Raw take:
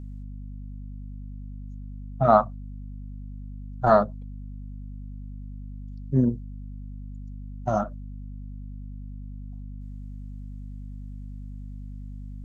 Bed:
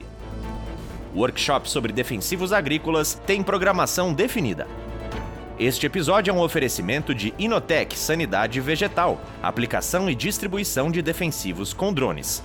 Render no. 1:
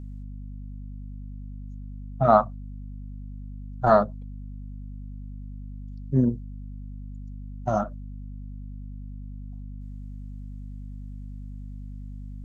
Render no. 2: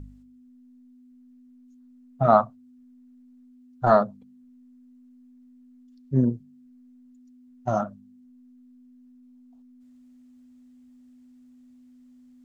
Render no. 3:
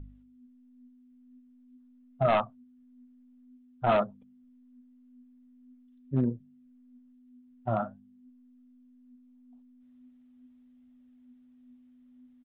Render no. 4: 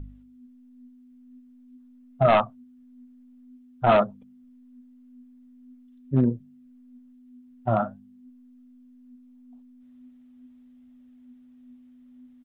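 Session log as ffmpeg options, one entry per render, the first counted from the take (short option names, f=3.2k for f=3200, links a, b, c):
-af anull
-af "bandreject=f=50:t=h:w=4,bandreject=f=100:t=h:w=4,bandreject=f=150:t=h:w=4,bandreject=f=200:t=h:w=4"
-af "aresample=8000,asoftclip=type=hard:threshold=-14dB,aresample=44100,flanger=delay=1.4:depth=7.6:regen=71:speed=0.46:shape=sinusoidal"
-af "volume=6dB"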